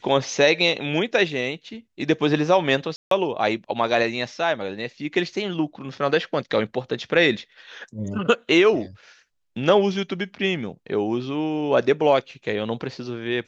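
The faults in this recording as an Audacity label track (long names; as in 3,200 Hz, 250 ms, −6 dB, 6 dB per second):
2.960000	3.110000	drop-out 153 ms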